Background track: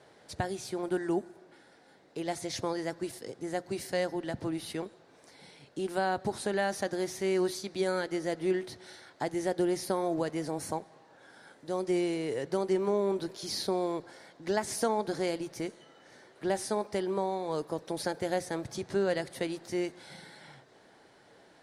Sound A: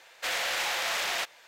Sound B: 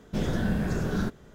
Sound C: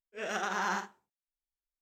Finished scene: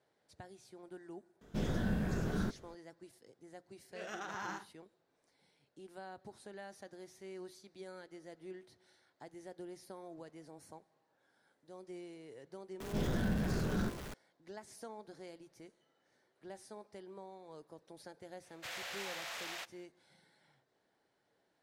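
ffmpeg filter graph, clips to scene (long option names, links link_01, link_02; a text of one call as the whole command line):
ffmpeg -i bed.wav -i cue0.wav -i cue1.wav -i cue2.wav -filter_complex "[2:a]asplit=2[link_01][link_02];[0:a]volume=-19.5dB[link_03];[link_02]aeval=exprs='val(0)+0.5*0.0237*sgn(val(0))':channel_layout=same[link_04];[link_01]atrim=end=1.34,asetpts=PTS-STARTPTS,volume=-7.5dB,afade=type=in:duration=0.004:curve=hsin,afade=type=out:start_time=1.336:duration=0.004:curve=hsin,adelay=1410[link_05];[3:a]atrim=end=1.81,asetpts=PTS-STARTPTS,volume=-10.5dB,afade=type=in:duration=0.004:curve=hsin,afade=type=out:start_time=1.806:duration=0.004:curve=hsin,adelay=3780[link_06];[link_04]atrim=end=1.34,asetpts=PTS-STARTPTS,volume=-8.5dB,afade=type=in:duration=0.004:curve=hsin,afade=type=out:start_time=1.336:duration=0.004:curve=hsin,adelay=12800[link_07];[1:a]atrim=end=1.47,asetpts=PTS-STARTPTS,volume=-14dB,afade=type=in:duration=0.05,afade=type=out:start_time=1.42:duration=0.05,adelay=18400[link_08];[link_03][link_05][link_06][link_07][link_08]amix=inputs=5:normalize=0" out.wav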